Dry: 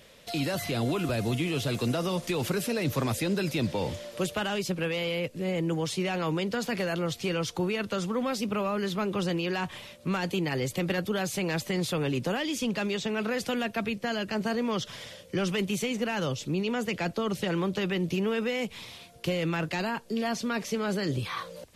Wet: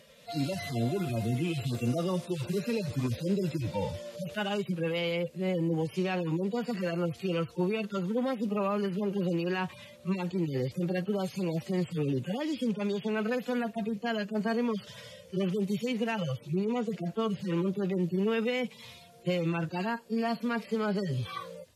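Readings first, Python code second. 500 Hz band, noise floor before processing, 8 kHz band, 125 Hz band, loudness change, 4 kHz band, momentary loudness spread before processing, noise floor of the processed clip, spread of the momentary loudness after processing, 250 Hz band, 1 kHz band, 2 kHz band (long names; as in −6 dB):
−1.5 dB, −51 dBFS, −11.5 dB, −0.5 dB, −1.5 dB, −7.0 dB, 4 LU, −53 dBFS, 4 LU, −0.5 dB, −3.0 dB, −5.5 dB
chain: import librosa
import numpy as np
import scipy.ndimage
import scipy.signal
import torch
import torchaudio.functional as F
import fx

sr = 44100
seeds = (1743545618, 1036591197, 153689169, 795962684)

y = fx.hpss_only(x, sr, part='harmonic')
y = scipy.signal.sosfilt(scipy.signal.butter(2, 41.0, 'highpass', fs=sr, output='sos'), y)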